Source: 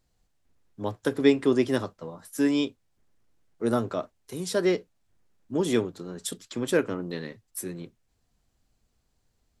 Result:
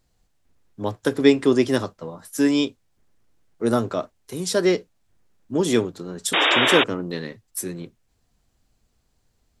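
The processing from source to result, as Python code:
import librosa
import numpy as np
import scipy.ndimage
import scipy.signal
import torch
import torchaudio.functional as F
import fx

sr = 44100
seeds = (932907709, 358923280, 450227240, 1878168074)

y = fx.dynamic_eq(x, sr, hz=6000.0, q=0.94, threshold_db=-48.0, ratio=4.0, max_db=4)
y = fx.spec_paint(y, sr, seeds[0], shape='noise', start_s=6.33, length_s=0.51, low_hz=270.0, high_hz=3800.0, level_db=-23.0)
y = F.gain(torch.from_numpy(y), 4.5).numpy()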